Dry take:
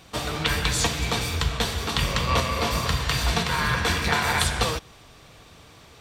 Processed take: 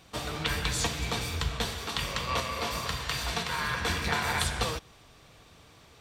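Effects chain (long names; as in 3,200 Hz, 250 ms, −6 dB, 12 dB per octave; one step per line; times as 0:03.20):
0:01.74–0:03.82: low-shelf EQ 300 Hz −6.5 dB
level −6 dB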